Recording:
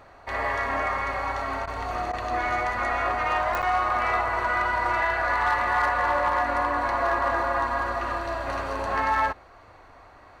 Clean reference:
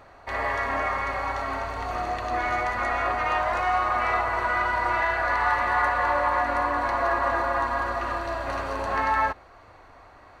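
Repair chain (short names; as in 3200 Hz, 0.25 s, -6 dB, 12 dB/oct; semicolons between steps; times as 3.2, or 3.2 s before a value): clip repair -16 dBFS; de-click; interpolate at 3.62, 7.4 ms; interpolate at 1.66/2.12, 12 ms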